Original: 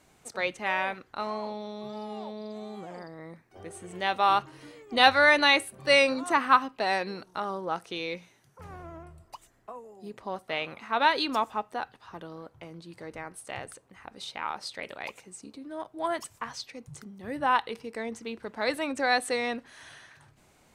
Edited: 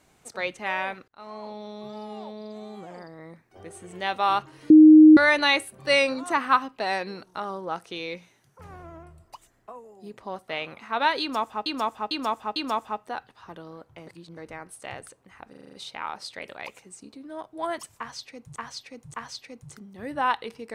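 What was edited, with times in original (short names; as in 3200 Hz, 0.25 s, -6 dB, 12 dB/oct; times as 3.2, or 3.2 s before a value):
1.08–1.85 fade in equal-power
4.7–5.17 bleep 310 Hz -7 dBFS
11.21–11.66 loop, 4 plays
12.72–13.02 reverse
14.14 stutter 0.04 s, 7 plays
16.39–16.97 loop, 3 plays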